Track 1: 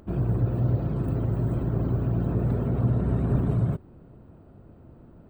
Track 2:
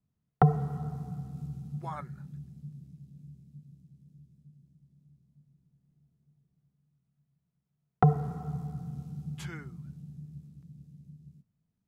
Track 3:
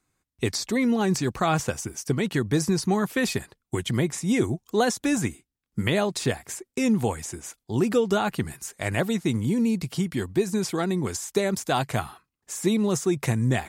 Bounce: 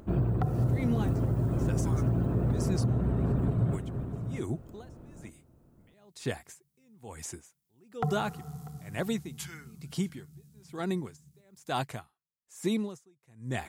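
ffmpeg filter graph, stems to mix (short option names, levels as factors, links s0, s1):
-filter_complex "[0:a]volume=1.06,asplit=2[s0][s1];[s1]volume=0.237[s2];[1:a]crystalizer=i=6:c=0,volume=0.473,asplit=2[s3][s4];[s4]volume=0.075[s5];[2:a]aeval=exprs='val(0)*pow(10,-38*(0.5-0.5*cos(2*PI*1.1*n/s))/20)':c=same,volume=0.596[s6];[s2][s5]amix=inputs=2:normalize=0,aecho=0:1:644:1[s7];[s0][s3][s6][s7]amix=inputs=4:normalize=0,alimiter=limit=0.119:level=0:latency=1:release=253"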